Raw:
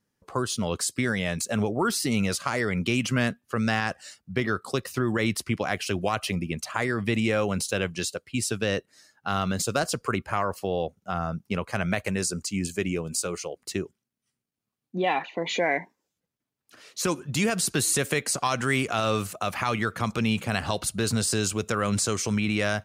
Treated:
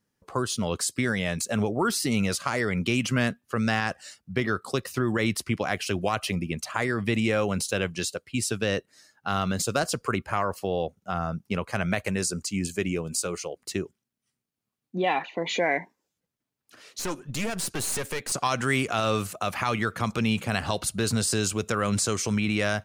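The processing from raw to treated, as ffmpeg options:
ffmpeg -i in.wav -filter_complex "[0:a]asettb=1/sr,asplit=3[link_01][link_02][link_03];[link_01]atrim=end=16.994[link_04];[link_02]atrim=start=16.99:end=18.32,asetpts=PTS-STARTPTS,afade=type=in:duration=0.004:curve=qsin,afade=type=out:start_time=1.326:duration=0.004:curve=qsin,aeval=exprs='(tanh(15.8*val(0)+0.7)-tanh(0.7))/15.8':channel_layout=same[link_05];[link_03]atrim=start=18.316[link_06];[link_04][link_05]acrossfade=duration=0.004:curve1=hsin:curve2=qsin[link_07];[link_07][link_06]acrossfade=duration=0.004:curve1=qsin:curve2=hsin" out.wav

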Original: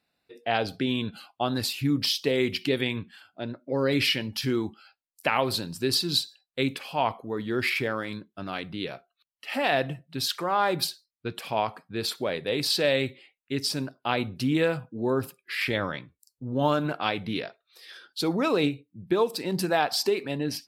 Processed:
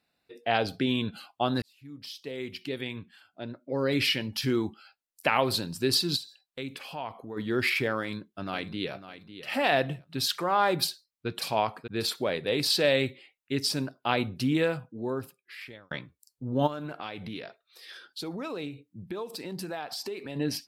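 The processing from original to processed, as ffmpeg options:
ffmpeg -i in.wav -filter_complex "[0:a]asplit=3[link_01][link_02][link_03];[link_01]afade=type=out:start_time=6.15:duration=0.02[link_04];[link_02]acompressor=threshold=-40dB:ratio=2:attack=3.2:release=140:knee=1:detection=peak,afade=type=in:start_time=6.15:duration=0.02,afade=type=out:start_time=7.36:duration=0.02[link_05];[link_03]afade=type=in:start_time=7.36:duration=0.02[link_06];[link_04][link_05][link_06]amix=inputs=3:normalize=0,asplit=2[link_07][link_08];[link_08]afade=type=in:start_time=7.98:duration=0.01,afade=type=out:start_time=8.94:duration=0.01,aecho=0:1:550|1100|1650:0.237137|0.0592843|0.0148211[link_09];[link_07][link_09]amix=inputs=2:normalize=0,asplit=2[link_10][link_11];[link_11]afade=type=in:start_time=10.82:duration=0.01,afade=type=out:start_time=11.28:duration=0.01,aecho=0:1:590|1180|1770:0.446684|0.111671|0.0279177[link_12];[link_10][link_12]amix=inputs=2:normalize=0,asplit=3[link_13][link_14][link_15];[link_13]afade=type=out:start_time=16.66:duration=0.02[link_16];[link_14]acompressor=threshold=-36dB:ratio=3:attack=3.2:release=140:knee=1:detection=peak,afade=type=in:start_time=16.66:duration=0.02,afade=type=out:start_time=20.35:duration=0.02[link_17];[link_15]afade=type=in:start_time=20.35:duration=0.02[link_18];[link_16][link_17][link_18]amix=inputs=3:normalize=0,asplit=3[link_19][link_20][link_21];[link_19]atrim=end=1.62,asetpts=PTS-STARTPTS,afade=type=out:start_time=1.616:duration=0.004:curve=hsin[link_22];[link_20]atrim=start=1.62:end=15.91,asetpts=PTS-STARTPTS,afade=type=in:duration=2.99,afade=type=out:start_time=12.69:duration=1.6[link_23];[link_21]atrim=start=15.91,asetpts=PTS-STARTPTS,afade=type=in:duration=0.004:curve=hsin[link_24];[link_22][link_23][link_24]concat=n=3:v=0:a=1" out.wav

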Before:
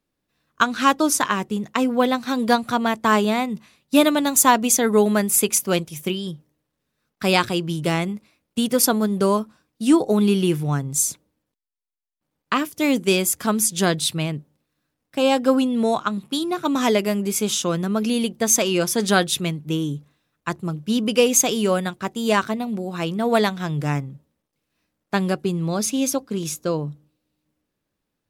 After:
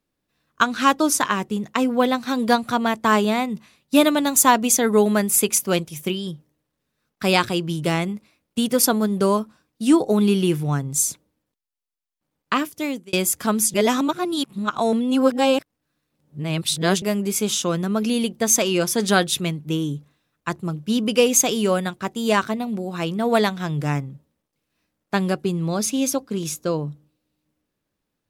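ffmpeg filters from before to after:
ffmpeg -i in.wav -filter_complex "[0:a]asplit=4[link_01][link_02][link_03][link_04];[link_01]atrim=end=13.13,asetpts=PTS-STARTPTS,afade=type=out:start_time=12.6:duration=0.53[link_05];[link_02]atrim=start=13.13:end=13.742,asetpts=PTS-STARTPTS,afade=type=in:duration=0.004:curve=hsin[link_06];[link_03]atrim=start=13.738:end=17.022,asetpts=PTS-STARTPTS,areverse[link_07];[link_04]atrim=start=17.018[link_08];[link_05][link_06]concat=n=2:v=0:a=1[link_09];[link_09][link_07]acrossfade=duration=0.004:curve1=hsin:curve2=hsin[link_10];[link_10][link_08]acrossfade=duration=0.004:curve1=hsin:curve2=hsin" out.wav

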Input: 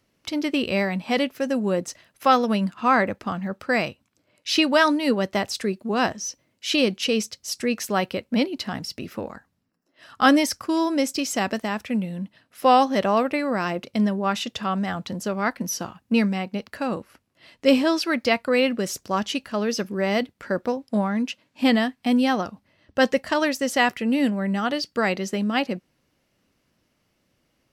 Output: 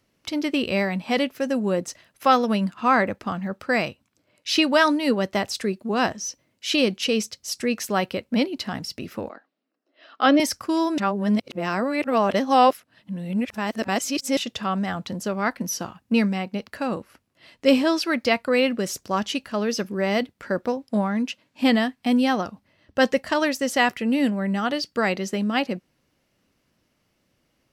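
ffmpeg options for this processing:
ffmpeg -i in.wav -filter_complex "[0:a]asettb=1/sr,asplit=3[link_01][link_02][link_03];[link_01]atrim=end=9.294[link_04];[link_02]atrim=start=9.29:end=10.4,asetpts=PTS-STARTPTS,afade=type=in:duration=0.004:curve=qsin,afade=type=out:start_time=1.106:duration=0.004:curve=qsin,highpass=frequency=290:width=0.5412,highpass=frequency=290:width=1.3066,equalizer=frequency=290:width_type=q:width=4:gain=3,equalizer=frequency=630:width_type=q:width=4:gain=4,equalizer=frequency=950:width_type=q:width=4:gain=-6,equalizer=frequency=1700:width_type=q:width=4:gain=-4,lowpass=frequency=4300:width=0.5412,lowpass=frequency=4300:width=1.3066[link_05];[link_03]atrim=start=10.396[link_06];[link_04][link_05]acrossfade=duration=0.004:curve1=hsin:curve2=qsin[link_07];[link_07][link_06]acrossfade=duration=0.004:curve1=qsin:curve2=hsin,asplit=3[link_08][link_09][link_10];[link_08]atrim=end=10.982[link_11];[link_09]atrim=start=10.978:end=14.372,asetpts=PTS-STARTPTS,areverse[link_12];[link_10]atrim=start=14.368[link_13];[link_11][link_12]acrossfade=duration=0.004:curve1=hsin:curve2=hsin[link_14];[link_14][link_13]acrossfade=duration=0.004:curve1=hsin:curve2=hsin" out.wav

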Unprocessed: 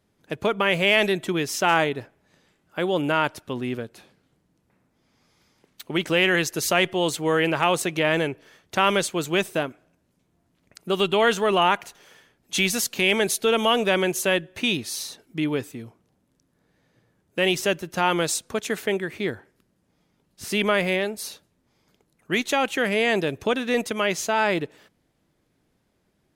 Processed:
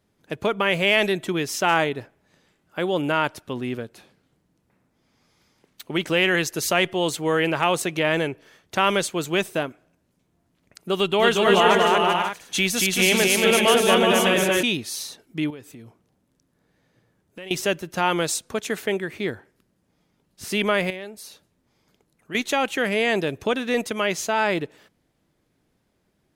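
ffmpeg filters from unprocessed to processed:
ffmpeg -i in.wav -filter_complex "[0:a]asettb=1/sr,asplit=3[link_01][link_02][link_03];[link_01]atrim=end=10.964[link_04];[link_02]atrim=start=10.96:end=14.63,asetpts=PTS-STARTPTS,afade=type=in:duration=0.004:curve=qsin,afade=type=out:start_time=3.666:duration=0.004:curve=qsin,aecho=1:1:230|379.5|476.7|539.8|580.9:0.794|0.631|0.501|0.398|0.316,atrim=end_sample=161847[link_05];[link_03]atrim=start=14.626[link_06];[link_04][link_05]acrossfade=duration=0.004:curve1=hsin:curve2=qsin[link_07];[link_07][link_06]acrossfade=duration=0.004:curve1=qsin:curve2=hsin,asettb=1/sr,asplit=3[link_08][link_09][link_10];[link_08]atrim=end=15.504[link_11];[link_09]atrim=start=15.5:end=17.51,asetpts=PTS-STARTPTS,afade=type=in:duration=0.004:curve=qsin,afade=type=out:start_time=2.006:duration=0.004:curve=qsin,acompressor=threshold=-40dB:ratio=3:attack=3.2:release=140:knee=1:detection=peak[link_12];[link_10]atrim=start=17.506[link_13];[link_11][link_12]acrossfade=duration=0.004:curve1=hsin:curve2=qsin[link_14];[link_14][link_13]acrossfade=duration=0.004:curve1=qsin:curve2=hsin,asettb=1/sr,asplit=3[link_15][link_16][link_17];[link_15]atrim=end=20.904[link_18];[link_16]atrim=start=20.9:end=22.35,asetpts=PTS-STARTPTS,afade=type=in:duration=0.004:curve=qsin,afade=type=out:start_time=1.446:duration=0.004:curve=qsin,acompressor=threshold=-50dB:ratio=1.5:attack=3.2:release=140:knee=1:detection=peak[link_19];[link_17]atrim=start=22.346[link_20];[link_18][link_19]acrossfade=duration=0.004:curve1=hsin:curve2=qsin[link_21];[link_21][link_20]acrossfade=duration=0.004:curve1=qsin:curve2=hsin" out.wav

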